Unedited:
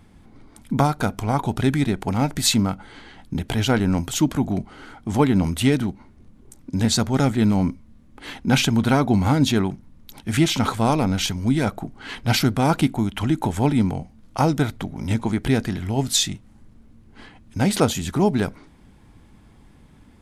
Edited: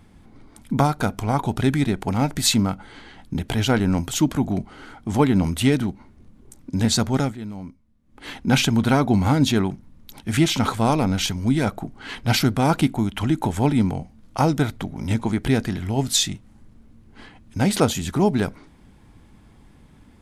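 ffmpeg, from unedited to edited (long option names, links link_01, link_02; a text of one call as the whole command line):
ffmpeg -i in.wav -filter_complex "[0:a]asplit=3[link_01][link_02][link_03];[link_01]atrim=end=7.38,asetpts=PTS-STARTPTS,afade=type=out:start_time=7.14:duration=0.24:silence=0.177828[link_04];[link_02]atrim=start=7.38:end=8.03,asetpts=PTS-STARTPTS,volume=-15dB[link_05];[link_03]atrim=start=8.03,asetpts=PTS-STARTPTS,afade=type=in:duration=0.24:silence=0.177828[link_06];[link_04][link_05][link_06]concat=n=3:v=0:a=1" out.wav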